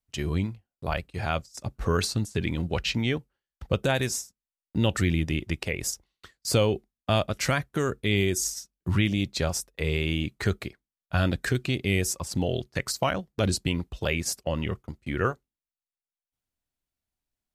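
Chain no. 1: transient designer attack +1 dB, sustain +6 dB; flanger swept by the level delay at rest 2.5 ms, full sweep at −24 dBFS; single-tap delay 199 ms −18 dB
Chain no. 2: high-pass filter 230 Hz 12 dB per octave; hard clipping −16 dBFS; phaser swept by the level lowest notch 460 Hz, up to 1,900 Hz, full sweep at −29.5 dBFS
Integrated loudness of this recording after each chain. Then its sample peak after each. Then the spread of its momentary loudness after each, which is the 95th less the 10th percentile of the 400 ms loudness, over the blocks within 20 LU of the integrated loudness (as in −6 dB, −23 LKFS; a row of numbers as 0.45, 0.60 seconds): −28.5, −32.5 LKFS; −10.5, −15.0 dBFS; 9, 9 LU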